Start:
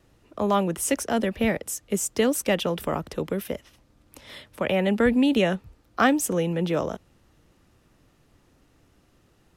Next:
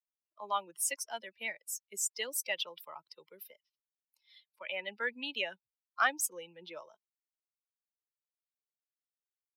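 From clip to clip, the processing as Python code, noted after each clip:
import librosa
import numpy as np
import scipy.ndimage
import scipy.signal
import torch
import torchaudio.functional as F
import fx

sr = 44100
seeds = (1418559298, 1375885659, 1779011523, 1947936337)

y = fx.bin_expand(x, sr, power=2.0)
y = scipy.signal.sosfilt(scipy.signal.butter(2, 1100.0, 'highpass', fs=sr, output='sos'), y)
y = F.gain(torch.from_numpy(y), -1.5).numpy()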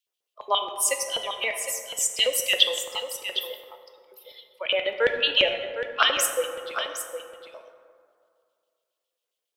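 y = fx.filter_lfo_highpass(x, sr, shape='square', hz=7.3, low_hz=460.0, high_hz=3100.0, q=4.1)
y = y + 10.0 ** (-9.5 / 20.0) * np.pad(y, (int(760 * sr / 1000.0), 0))[:len(y)]
y = fx.rev_plate(y, sr, seeds[0], rt60_s=2.2, hf_ratio=0.4, predelay_ms=0, drr_db=5.0)
y = F.gain(torch.from_numpy(y), 8.0).numpy()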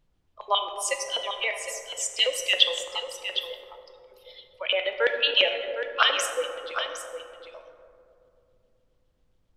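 y = fx.bandpass_edges(x, sr, low_hz=450.0, high_hz=6300.0)
y = fx.echo_bbd(y, sr, ms=269, stages=1024, feedback_pct=58, wet_db=-9)
y = fx.dmg_noise_colour(y, sr, seeds[1], colour='brown', level_db=-67.0)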